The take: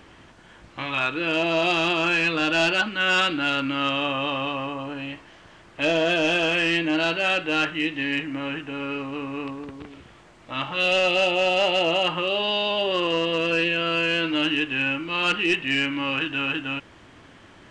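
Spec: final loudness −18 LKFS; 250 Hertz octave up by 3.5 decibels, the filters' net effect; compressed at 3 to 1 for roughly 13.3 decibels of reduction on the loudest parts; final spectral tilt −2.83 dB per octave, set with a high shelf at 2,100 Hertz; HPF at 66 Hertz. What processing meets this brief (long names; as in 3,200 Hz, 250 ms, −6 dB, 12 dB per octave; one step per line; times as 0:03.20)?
high-pass filter 66 Hz
parametric band 250 Hz +5 dB
high-shelf EQ 2,100 Hz −5 dB
downward compressor 3 to 1, threshold −37 dBFS
level +17.5 dB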